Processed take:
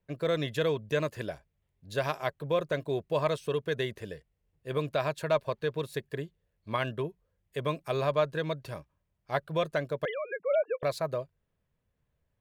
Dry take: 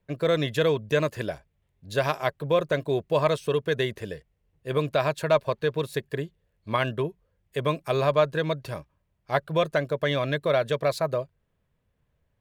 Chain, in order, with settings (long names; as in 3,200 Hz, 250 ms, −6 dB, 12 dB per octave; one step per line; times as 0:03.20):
0:10.05–0:10.83: three sine waves on the formant tracks
level −5.5 dB